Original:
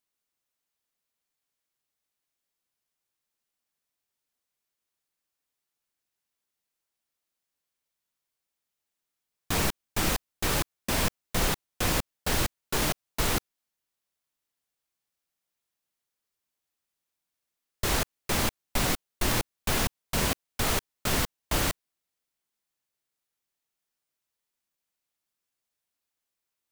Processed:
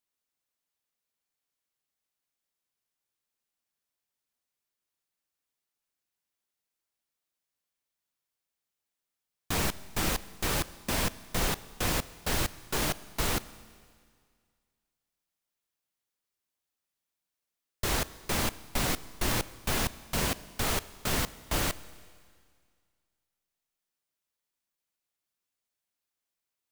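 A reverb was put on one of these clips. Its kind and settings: Schroeder reverb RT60 2 s, combs from 28 ms, DRR 17 dB; trim -2.5 dB

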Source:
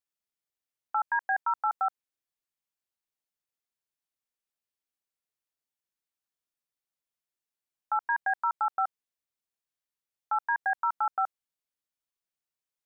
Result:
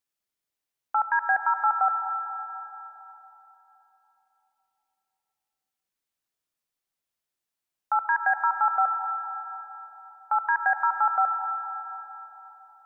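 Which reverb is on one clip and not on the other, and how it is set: algorithmic reverb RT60 3.8 s, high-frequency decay 0.55×, pre-delay 35 ms, DRR 8 dB; trim +4 dB

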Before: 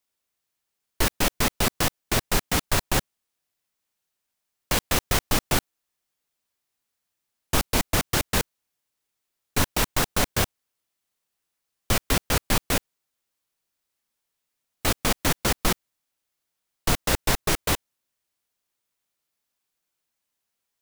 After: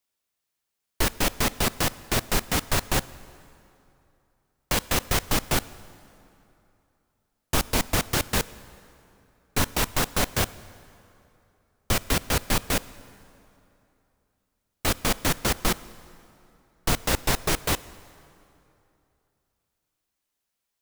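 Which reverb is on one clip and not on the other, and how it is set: plate-style reverb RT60 2.9 s, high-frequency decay 0.7×, DRR 17.5 dB; trim -1 dB

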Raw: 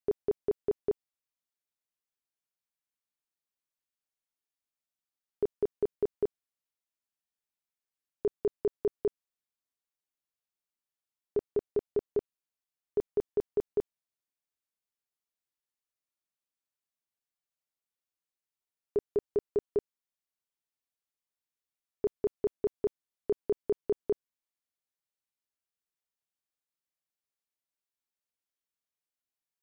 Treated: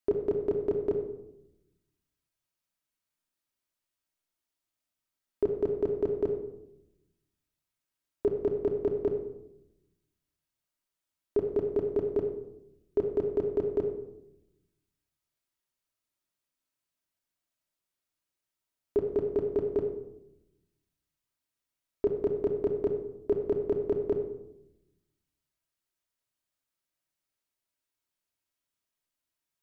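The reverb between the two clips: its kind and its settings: simulated room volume 2500 m³, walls furnished, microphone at 2.8 m; trim +2.5 dB

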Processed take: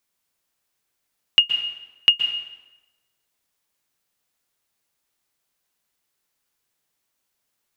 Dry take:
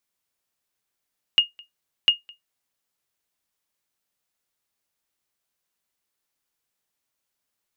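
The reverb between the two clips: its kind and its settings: plate-style reverb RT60 1.1 s, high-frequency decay 0.8×, pre-delay 110 ms, DRR 7 dB; trim +4 dB

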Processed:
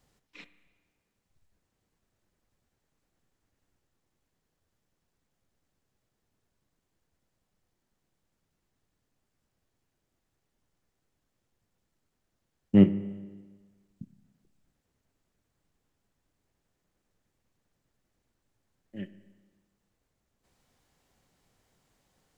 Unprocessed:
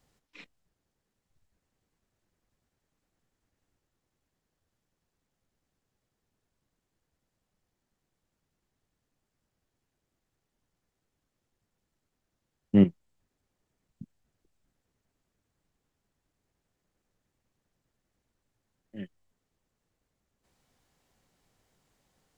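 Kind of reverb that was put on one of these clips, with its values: spring tank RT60 1.4 s, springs 30/57 ms, chirp 50 ms, DRR 13.5 dB; trim +1 dB

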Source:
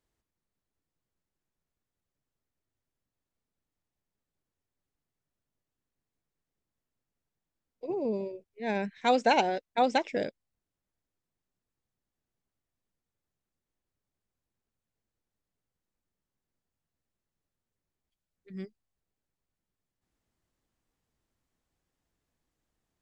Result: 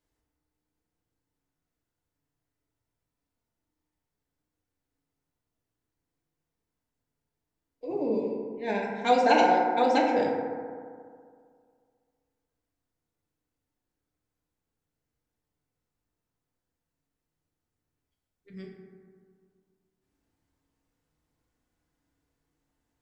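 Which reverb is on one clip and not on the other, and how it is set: FDN reverb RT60 2.1 s, low-frequency decay 1×, high-frequency decay 0.3×, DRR -2.5 dB; trim -1.5 dB

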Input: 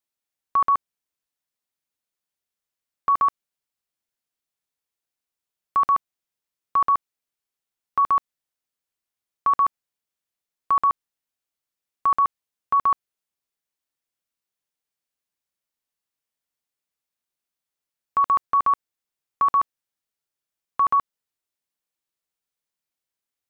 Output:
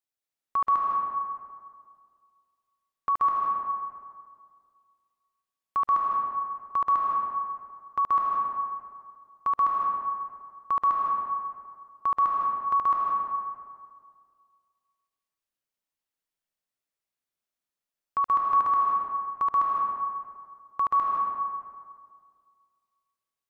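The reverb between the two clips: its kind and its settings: algorithmic reverb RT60 2 s, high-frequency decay 0.5×, pre-delay 115 ms, DRR -1.5 dB; trim -6 dB

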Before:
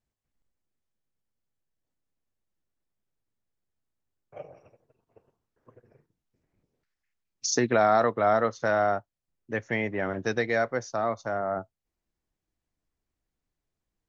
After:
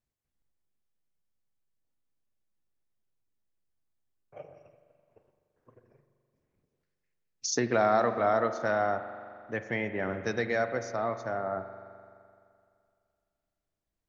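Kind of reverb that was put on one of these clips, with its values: spring tank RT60 2.3 s, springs 42 ms, chirp 25 ms, DRR 9 dB; trim -3.5 dB

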